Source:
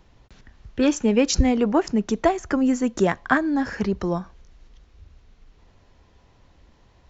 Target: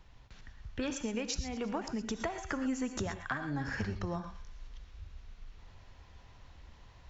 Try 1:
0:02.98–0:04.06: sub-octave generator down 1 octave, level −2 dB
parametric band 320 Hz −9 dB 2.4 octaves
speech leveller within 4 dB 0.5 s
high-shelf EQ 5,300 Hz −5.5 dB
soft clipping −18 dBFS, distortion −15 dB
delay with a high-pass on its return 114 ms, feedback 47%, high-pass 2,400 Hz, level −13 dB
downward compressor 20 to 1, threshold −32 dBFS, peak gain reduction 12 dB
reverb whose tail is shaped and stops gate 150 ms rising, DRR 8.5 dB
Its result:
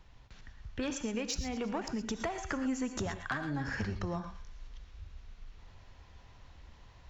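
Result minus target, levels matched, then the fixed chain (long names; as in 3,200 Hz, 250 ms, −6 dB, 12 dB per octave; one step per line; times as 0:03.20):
soft clipping: distortion +13 dB
0:02.98–0:04.06: sub-octave generator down 1 octave, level −2 dB
parametric band 320 Hz −9 dB 2.4 octaves
speech leveller within 4 dB 0.5 s
high-shelf EQ 5,300 Hz −5.5 dB
soft clipping −8.5 dBFS, distortion −28 dB
delay with a high-pass on its return 114 ms, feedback 47%, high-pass 2,400 Hz, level −13 dB
downward compressor 20 to 1, threshold −32 dBFS, peak gain reduction 16.5 dB
reverb whose tail is shaped and stops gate 150 ms rising, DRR 8.5 dB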